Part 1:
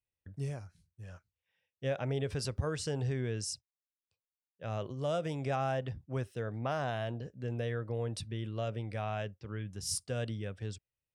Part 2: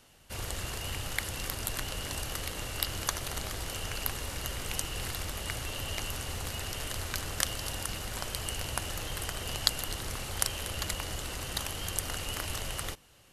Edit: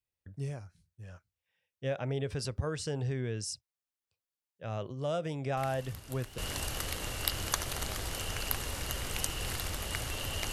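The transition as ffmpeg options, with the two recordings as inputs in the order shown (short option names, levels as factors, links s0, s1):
-filter_complex "[1:a]asplit=2[s0][s1];[0:a]apad=whole_dur=10.52,atrim=end=10.52,atrim=end=6.382[s2];[s1]atrim=start=1.928:end=6.07[s3];[s0]atrim=start=1.12:end=1.93,asetpts=PTS-STARTPTS,volume=0.188,afade=t=in:d=0.004:c=hsin,afade=t=out:st=0.806:d=0.004:c=hsin,adelay=245637S[s4];[s2][s3]acrossfade=d=0.004:c1=hsin:c2=hsin[s5];[s5][s4]amix=inputs=2:normalize=0"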